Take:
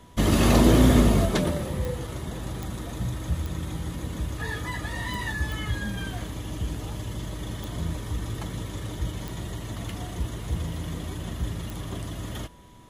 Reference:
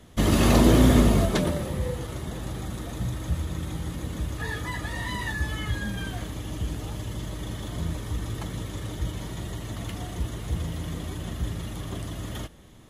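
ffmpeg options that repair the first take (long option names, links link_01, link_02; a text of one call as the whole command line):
ffmpeg -i in.wav -af "adeclick=threshold=4,bandreject=frequency=980:width=30" out.wav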